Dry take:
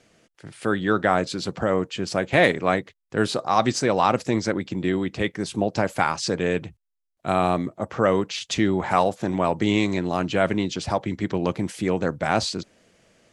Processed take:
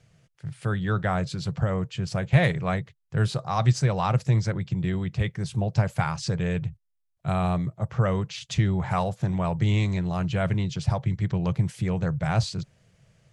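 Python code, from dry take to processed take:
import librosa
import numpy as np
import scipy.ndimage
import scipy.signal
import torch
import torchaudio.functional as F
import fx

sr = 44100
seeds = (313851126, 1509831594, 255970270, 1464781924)

y = fx.low_shelf_res(x, sr, hz=190.0, db=11.0, q=3.0)
y = F.gain(torch.from_numpy(y), -6.5).numpy()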